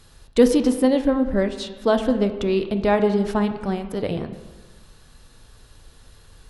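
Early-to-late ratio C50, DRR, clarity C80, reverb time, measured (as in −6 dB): 10.0 dB, 7.5 dB, 11.5 dB, 1.3 s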